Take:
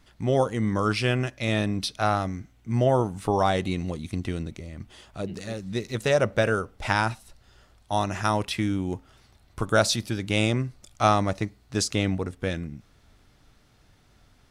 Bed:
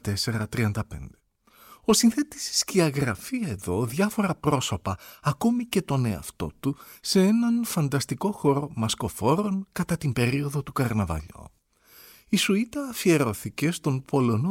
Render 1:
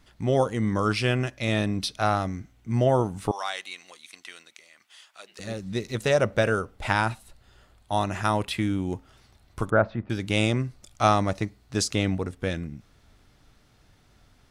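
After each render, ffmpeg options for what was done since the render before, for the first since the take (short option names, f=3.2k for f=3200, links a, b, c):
-filter_complex "[0:a]asettb=1/sr,asplit=3[a][b][c];[a]atrim=end=3.314[d];[b]atrim=start=3.31:end=5.39,asetpts=PTS-STARTPTS,afade=t=in:d=0.004:c=qsin,afade=t=out:st=2.076:d=0.004:c=qsin,highpass=1.4k[e];[c]atrim=start=5.386[f];[d][e]acrossfade=d=0.004:c1=hsin:c2=qsin[g];[g][f]acrossfade=d=0.004:c1=qsin:c2=hsin,asettb=1/sr,asplit=3[h][i][j];[h]atrim=end=6.774[k];[i]atrim=start=6.77:end=8.78,asetpts=PTS-STARTPTS,afade=t=in:d=0.004:c=qsin,afade=t=out:st=2.006:d=0.004:c=qsin,equalizer=f=5.6k:w=3.9:g=-6.5[l];[j]atrim=start=8.776[m];[k][l]acrossfade=d=0.004:c1=hsin:c2=qsin[n];[n][m]acrossfade=d=0.004:c1=qsin:c2=hsin,asettb=1/sr,asplit=3[o][p][q];[o]atrim=end=9.704[r];[p]atrim=start=9.7:end=10.1,asetpts=PTS-STARTPTS,afade=t=in:d=0.004:c=qsin,afade=t=out:st=0.396:d=0.004:c=qsin,lowpass=f=1.7k:w=0.5412,lowpass=f=1.7k:w=1.3066[s];[q]atrim=start=10.096[t];[r][s]acrossfade=d=0.004:c1=hsin:c2=qsin[u];[u][t]acrossfade=d=0.004:c1=qsin:c2=hsin"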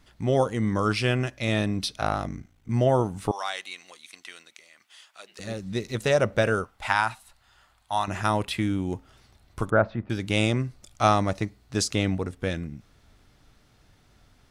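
-filter_complex "[0:a]asettb=1/sr,asplit=3[a][b][c];[a]atrim=end=2.004[d];[b]atrim=start=2:end=2.69,asetpts=PTS-STARTPTS,afade=t=in:d=0.004:c=qsin,afade=t=out:st=0.686:d=0.004:c=qsin,aeval=exprs='val(0)*sin(2*PI*27*n/s)':c=same[e];[c]atrim=start=2.686[f];[d][e]acrossfade=d=0.004:c1=hsin:c2=qsin[g];[g][f]acrossfade=d=0.004:c1=qsin:c2=hsin,asettb=1/sr,asplit=3[h][i][j];[h]atrim=end=6.644[k];[i]atrim=start=6.64:end=8.08,asetpts=PTS-STARTPTS,afade=t=in:d=0.004:c=qsin,afade=t=out:st=1.436:d=0.004:c=qsin,lowshelf=f=640:t=q:w=1.5:g=-9.5[l];[j]atrim=start=8.076[m];[k][l]acrossfade=d=0.004:c1=hsin:c2=qsin[n];[n][m]acrossfade=d=0.004:c1=qsin:c2=hsin"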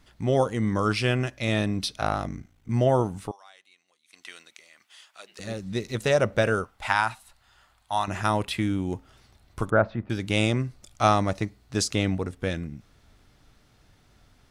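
-filter_complex "[0:a]asplit=3[a][b][c];[a]atrim=end=3.37,asetpts=PTS-STARTPTS,afade=t=out:st=3.15:d=0.22:silence=0.0944061[d];[b]atrim=start=3.37:end=4.05,asetpts=PTS-STARTPTS,volume=-20.5dB[e];[c]atrim=start=4.05,asetpts=PTS-STARTPTS,afade=t=in:d=0.22:silence=0.0944061[f];[d][e][f]concat=n=3:v=0:a=1"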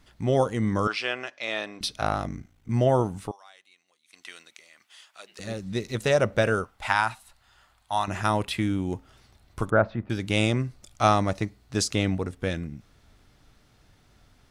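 -filter_complex "[0:a]asettb=1/sr,asplit=3[a][b][c];[a]atrim=end=0.874[d];[b]atrim=start=0.87:end=1.81,asetpts=PTS-STARTPTS,afade=t=in:d=0.004:c=qsin,afade=t=out:st=0.936:d=0.004:c=qsin,highpass=600,lowpass=4.9k[e];[c]atrim=start=1.806[f];[d][e]acrossfade=d=0.004:c1=hsin:c2=qsin[g];[g][f]acrossfade=d=0.004:c1=qsin:c2=hsin"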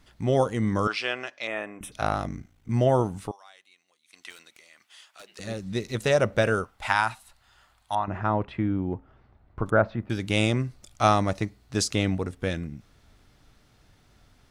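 -filter_complex "[0:a]asettb=1/sr,asplit=3[a][b][c];[a]atrim=end=1.474[d];[b]atrim=start=1.47:end=1.92,asetpts=PTS-STARTPTS,afade=t=in:d=0.004:c=qsin,afade=t=out:st=0.446:d=0.004:c=qsin,asuperstop=centerf=4500:order=4:qfactor=0.81[e];[c]atrim=start=1.916[f];[d][e]acrossfade=d=0.004:c1=hsin:c2=qsin[g];[g][f]acrossfade=d=0.004:c1=qsin:c2=hsin,asettb=1/sr,asplit=3[h][i][j];[h]atrim=end=4.304[k];[i]atrim=start=4.3:end=5.26,asetpts=PTS-STARTPTS,afade=t=in:d=0.004:c=qsin,afade=t=out:st=0.956:d=0.004:c=qsin,aeval=exprs='0.0119*(abs(mod(val(0)/0.0119+3,4)-2)-1)':c=same[l];[j]atrim=start=5.256[m];[k][l]acrossfade=d=0.004:c1=hsin:c2=qsin[n];[n][m]acrossfade=d=0.004:c1=qsin:c2=hsin,asettb=1/sr,asplit=3[o][p][q];[o]atrim=end=7.954[r];[p]atrim=start=7.95:end=9.66,asetpts=PTS-STARTPTS,afade=t=in:d=0.004:c=qsin,afade=t=out:st=1.706:d=0.004:c=qsin,lowpass=1.4k[s];[q]atrim=start=9.656[t];[r][s]acrossfade=d=0.004:c1=hsin:c2=qsin[u];[u][t]acrossfade=d=0.004:c1=qsin:c2=hsin"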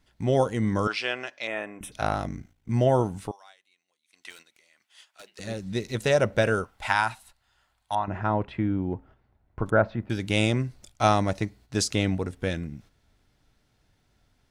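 -af "bandreject=f=1.2k:w=11,agate=range=-8dB:threshold=-50dB:ratio=16:detection=peak"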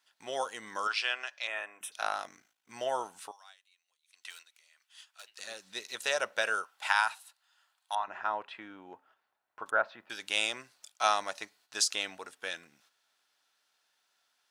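-af "highpass=1.1k,equalizer=f=2.1k:w=5.8:g=-6.5"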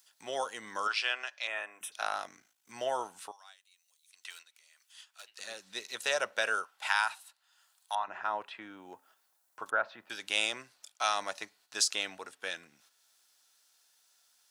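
-filter_complex "[0:a]acrossover=split=100|1500|5300[a][b][c][d];[b]alimiter=limit=-23dB:level=0:latency=1[e];[d]acompressor=mode=upward:threshold=-57dB:ratio=2.5[f];[a][e][c][f]amix=inputs=4:normalize=0"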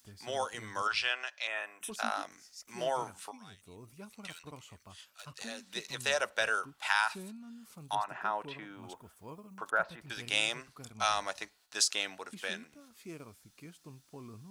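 -filter_complex "[1:a]volume=-26dB[a];[0:a][a]amix=inputs=2:normalize=0"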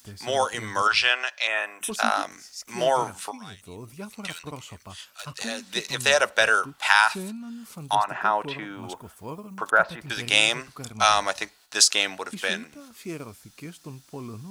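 -af "volume=11dB"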